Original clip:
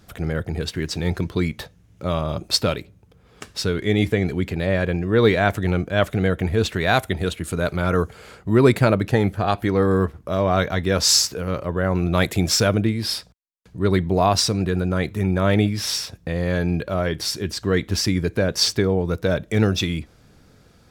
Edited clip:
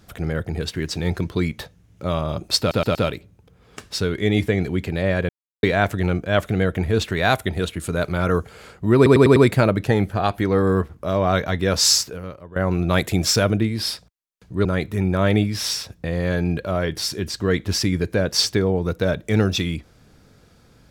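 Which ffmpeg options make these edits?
ffmpeg -i in.wav -filter_complex "[0:a]asplit=12[link_01][link_02][link_03][link_04][link_05][link_06][link_07][link_08][link_09][link_10][link_11][link_12];[link_01]atrim=end=2.712[link_13];[link_02]atrim=start=2.588:end=2.712[link_14];[link_03]atrim=start=2.588:end=2.712[link_15];[link_04]atrim=start=2.588:end=4.93,asetpts=PTS-STARTPTS,afade=type=out:start_time=2.338:duration=0.004:curve=hsin[link_16];[link_05]atrim=start=4.93:end=5.27,asetpts=PTS-STARTPTS,volume=0[link_17];[link_06]atrim=start=5.27:end=8.702,asetpts=PTS-STARTPTS,afade=type=in:duration=0.004:curve=hsin[link_18];[link_07]atrim=start=8.598:end=8.702[link_19];[link_08]atrim=start=8.598:end=8.702[link_20];[link_09]atrim=start=8.598:end=8.702[link_21];[link_10]atrim=start=8.598:end=11.8,asetpts=PTS-STARTPTS,afade=type=out:start_time=2.632:duration=0.57:curve=qua:silence=0.149624[link_22];[link_11]atrim=start=11.8:end=13.892,asetpts=PTS-STARTPTS,afade=type=in:duration=0.004:curve=hsin:silence=0.149624[link_23];[link_12]atrim=start=14.878[link_24];[link_13][link_14]acrossfade=duration=0.004:curve1=hsin:curve2=hsin[link_25];[link_25][link_15]acrossfade=duration=0.004:curve1=hsin:curve2=hsin[link_26];[link_16][link_17][link_18]concat=n=3:v=0:a=1[link_27];[link_26][link_27]acrossfade=duration=0.004:curve1=hsin:curve2=hsin[link_28];[link_28][link_19]acrossfade=duration=0.004:curve1=hsin:curve2=hsin[link_29];[link_29][link_20]acrossfade=duration=0.004:curve1=hsin:curve2=hsin[link_30];[link_30][link_21]acrossfade=duration=0.004:curve1=hsin:curve2=hsin[link_31];[link_22][link_23]concat=n=2:v=0:a=1[link_32];[link_31][link_32]acrossfade=duration=0.004:curve1=hsin:curve2=hsin[link_33];[link_33][link_24]acrossfade=duration=0.004:curve1=hsin:curve2=hsin" out.wav

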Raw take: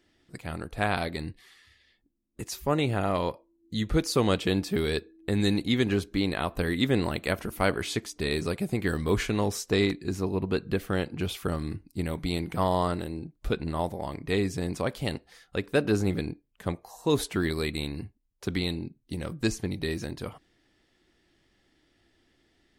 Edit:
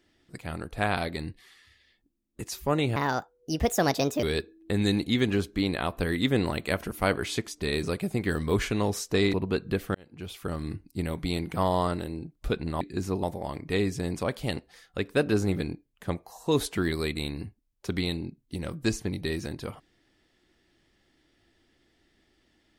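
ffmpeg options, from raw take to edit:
ffmpeg -i in.wav -filter_complex "[0:a]asplit=7[link_01][link_02][link_03][link_04][link_05][link_06][link_07];[link_01]atrim=end=2.964[link_08];[link_02]atrim=start=2.96:end=4.81,asetpts=PTS-STARTPTS,asetrate=64386,aresample=44100,atrim=end_sample=55880,asetpts=PTS-STARTPTS[link_09];[link_03]atrim=start=4.806:end=9.922[link_10];[link_04]atrim=start=10.338:end=10.95,asetpts=PTS-STARTPTS,afade=type=out:start_time=0.608:duration=0.004:curve=hsin[link_11];[link_05]atrim=start=10.95:end=13.812,asetpts=PTS-STARTPTS,afade=type=in:duration=0.79[link_12];[link_06]atrim=start=9.918:end=10.342[link_13];[link_07]atrim=start=13.808[link_14];[link_08][link_09]acrossfade=duration=0.004:curve1=hsin:curve2=hsin[link_15];[link_15][link_10]acrossfade=duration=0.004:curve1=hsin:curve2=hsin[link_16];[link_11][link_12]concat=n=2:v=0:a=1[link_17];[link_16][link_17]acrossfade=duration=0.004:curve1=hsin:curve2=hsin[link_18];[link_18][link_13]acrossfade=duration=0.004:curve1=hsin:curve2=hsin[link_19];[link_19][link_14]acrossfade=duration=0.004:curve1=hsin:curve2=hsin" out.wav

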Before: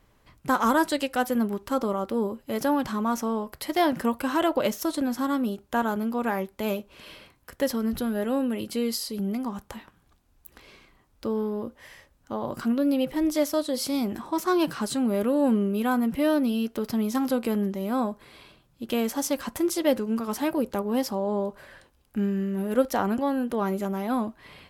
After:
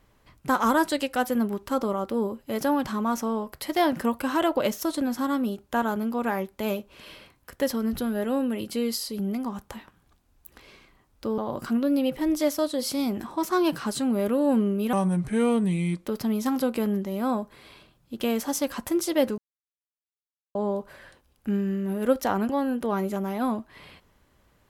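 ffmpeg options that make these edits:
ffmpeg -i in.wav -filter_complex "[0:a]asplit=6[link_01][link_02][link_03][link_04][link_05][link_06];[link_01]atrim=end=11.382[link_07];[link_02]atrim=start=12.328:end=15.884[link_08];[link_03]atrim=start=15.88:end=16.75,asetpts=PTS-STARTPTS,asetrate=33957,aresample=44100,atrim=end_sample=49827,asetpts=PTS-STARTPTS[link_09];[link_04]atrim=start=16.746:end=20.07,asetpts=PTS-STARTPTS,afade=type=out:start_time=3.32:duration=0.004:curve=hsin[link_10];[link_05]atrim=start=20.07:end=21.24,asetpts=PTS-STARTPTS,volume=0[link_11];[link_06]atrim=start=21.24,asetpts=PTS-STARTPTS,afade=type=in:duration=0.004:curve=hsin[link_12];[link_07][link_08]acrossfade=duration=0.004:curve1=hsin:curve2=hsin[link_13];[link_13][link_09]acrossfade=duration=0.004:curve1=hsin:curve2=hsin[link_14];[link_10][link_11][link_12]concat=n=3:v=0:a=1[link_15];[link_14][link_15]acrossfade=duration=0.004:curve1=hsin:curve2=hsin" out.wav

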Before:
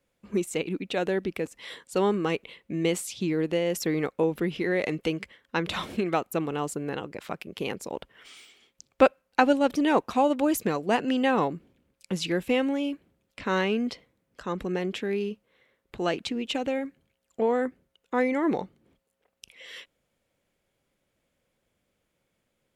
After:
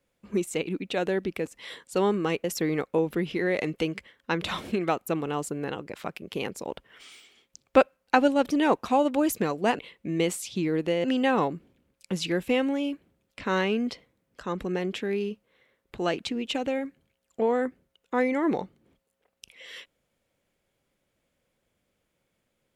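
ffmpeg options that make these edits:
ffmpeg -i in.wav -filter_complex "[0:a]asplit=4[link_01][link_02][link_03][link_04];[link_01]atrim=end=2.442[link_05];[link_02]atrim=start=3.688:end=11.042[link_06];[link_03]atrim=start=2.438:end=3.692[link_07];[link_04]atrim=start=11.038[link_08];[link_05][link_06]acrossfade=duration=0.004:curve1=hsin:curve2=hsin[link_09];[link_09][link_07]acrossfade=duration=0.004:curve1=hsin:curve2=hsin[link_10];[link_10][link_08]acrossfade=duration=0.004:curve1=hsin:curve2=hsin" out.wav

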